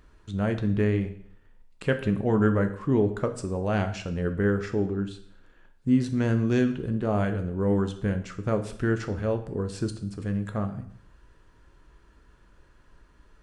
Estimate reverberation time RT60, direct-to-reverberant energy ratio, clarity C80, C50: 0.60 s, 7.0 dB, 15.0 dB, 12.0 dB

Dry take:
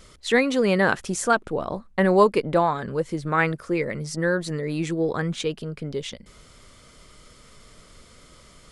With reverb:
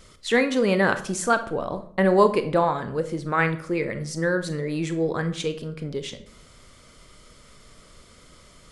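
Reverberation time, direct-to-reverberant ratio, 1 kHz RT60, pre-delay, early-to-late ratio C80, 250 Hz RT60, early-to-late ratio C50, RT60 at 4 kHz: 0.55 s, 9.5 dB, 0.55 s, 27 ms, 16.5 dB, 0.70 s, 12.5 dB, 0.40 s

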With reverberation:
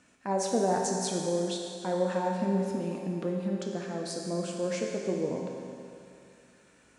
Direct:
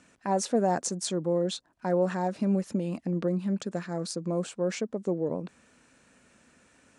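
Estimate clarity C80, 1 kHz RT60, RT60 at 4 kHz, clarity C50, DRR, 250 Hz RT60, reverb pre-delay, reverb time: 2.5 dB, 2.5 s, 2.5 s, 1.5 dB, −0.5 dB, 2.5 s, 8 ms, 2.5 s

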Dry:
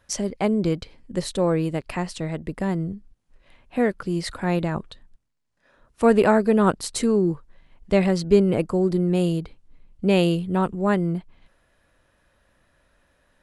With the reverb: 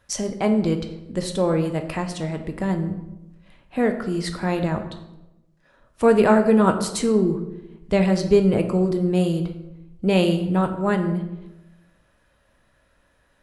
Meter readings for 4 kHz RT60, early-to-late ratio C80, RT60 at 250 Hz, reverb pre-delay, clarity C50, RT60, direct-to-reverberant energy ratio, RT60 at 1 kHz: 0.60 s, 12.0 dB, 1.2 s, 3 ms, 9.5 dB, 0.95 s, 5.5 dB, 0.90 s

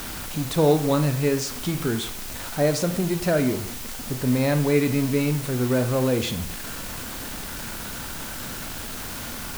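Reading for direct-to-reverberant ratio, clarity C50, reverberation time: 8.0 dB, 12.0 dB, 0.55 s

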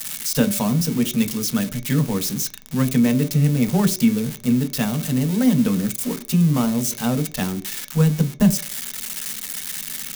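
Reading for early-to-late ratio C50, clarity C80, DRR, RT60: 17.0 dB, 20.0 dB, 4.5 dB, 0.55 s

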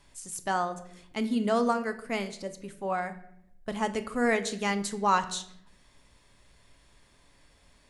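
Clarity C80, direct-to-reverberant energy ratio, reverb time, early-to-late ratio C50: 16.5 dB, 8.5 dB, 0.75 s, 13.5 dB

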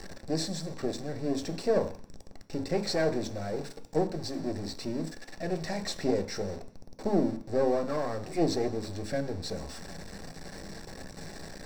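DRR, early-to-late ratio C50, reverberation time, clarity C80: 6.5 dB, 14.5 dB, 0.50 s, 17.0 dB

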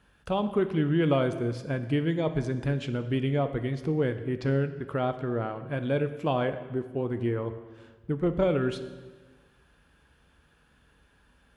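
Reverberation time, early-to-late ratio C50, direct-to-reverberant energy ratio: 1.4 s, 11.5 dB, 9.0 dB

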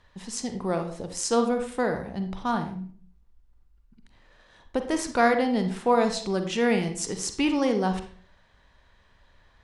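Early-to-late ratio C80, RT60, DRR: 12.5 dB, 0.45 s, 6.5 dB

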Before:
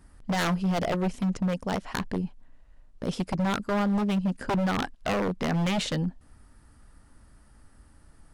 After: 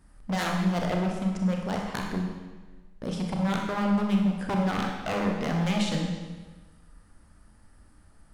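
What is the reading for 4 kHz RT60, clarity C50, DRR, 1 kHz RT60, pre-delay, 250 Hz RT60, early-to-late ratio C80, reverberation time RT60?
1.2 s, 2.5 dB, 0.5 dB, 1.3 s, 30 ms, 1.3 s, 4.5 dB, 1.3 s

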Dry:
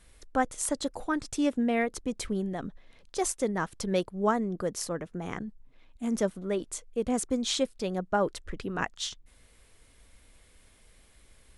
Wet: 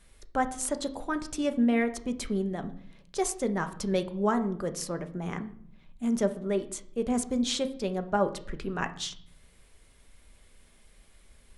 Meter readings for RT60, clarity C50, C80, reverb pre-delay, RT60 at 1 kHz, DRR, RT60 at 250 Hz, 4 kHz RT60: 0.60 s, 14.0 dB, 18.0 dB, 5 ms, 0.55 s, 8.0 dB, 1.1 s, 0.50 s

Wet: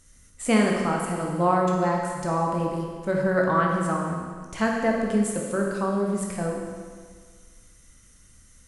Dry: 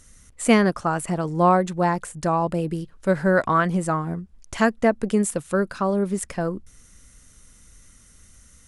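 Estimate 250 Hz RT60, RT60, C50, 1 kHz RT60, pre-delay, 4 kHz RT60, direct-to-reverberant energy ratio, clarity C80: 1.7 s, 1.7 s, 1.0 dB, 1.7 s, 16 ms, 1.7 s, −1.0 dB, 3.5 dB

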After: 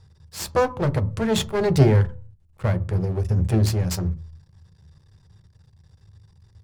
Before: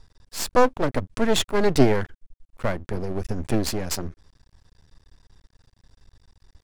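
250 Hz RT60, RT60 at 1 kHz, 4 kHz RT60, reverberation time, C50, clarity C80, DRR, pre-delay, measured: 0.40 s, 0.40 s, 0.30 s, 0.40 s, 20.0 dB, 25.0 dB, 9.5 dB, 3 ms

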